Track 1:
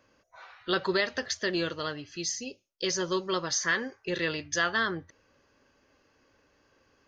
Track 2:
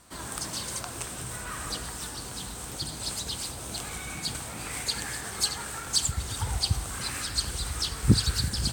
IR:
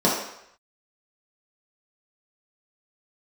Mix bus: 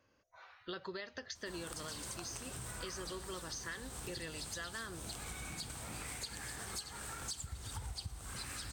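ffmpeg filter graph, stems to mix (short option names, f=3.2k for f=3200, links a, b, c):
-filter_complex "[0:a]equalizer=f=87:t=o:w=0.77:g=6,volume=-8dB[a];[1:a]lowshelf=f=62:g=7,adelay=1350,volume=-5.5dB[b];[a][b]amix=inputs=2:normalize=0,acompressor=threshold=-41dB:ratio=6"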